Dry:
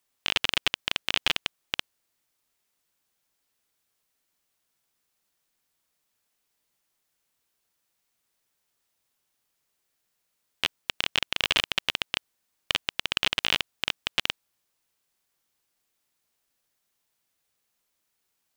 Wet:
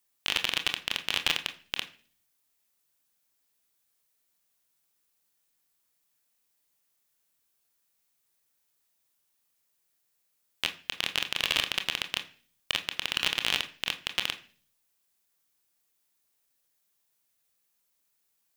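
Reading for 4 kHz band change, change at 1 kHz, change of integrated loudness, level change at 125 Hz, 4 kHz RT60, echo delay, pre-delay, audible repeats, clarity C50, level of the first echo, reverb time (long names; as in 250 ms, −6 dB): −2.0 dB, −3.0 dB, −2.0 dB, −3.5 dB, 0.55 s, no echo audible, 25 ms, no echo audible, 14.5 dB, no echo audible, 0.40 s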